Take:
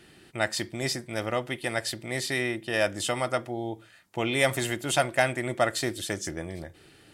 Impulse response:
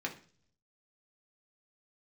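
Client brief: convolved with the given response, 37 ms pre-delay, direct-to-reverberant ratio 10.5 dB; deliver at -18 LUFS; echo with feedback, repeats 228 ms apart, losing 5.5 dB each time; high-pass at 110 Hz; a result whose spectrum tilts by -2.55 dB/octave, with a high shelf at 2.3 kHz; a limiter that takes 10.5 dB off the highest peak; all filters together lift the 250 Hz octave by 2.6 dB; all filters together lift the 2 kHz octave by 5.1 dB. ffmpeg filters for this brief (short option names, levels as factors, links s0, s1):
-filter_complex "[0:a]highpass=110,equalizer=f=250:t=o:g=3.5,equalizer=f=2000:t=o:g=3.5,highshelf=f=2300:g=5,alimiter=limit=0.178:level=0:latency=1,aecho=1:1:228|456|684|912|1140|1368|1596:0.531|0.281|0.149|0.079|0.0419|0.0222|0.0118,asplit=2[s0][s1];[1:a]atrim=start_sample=2205,adelay=37[s2];[s1][s2]afir=irnorm=-1:irlink=0,volume=0.211[s3];[s0][s3]amix=inputs=2:normalize=0,volume=2.66"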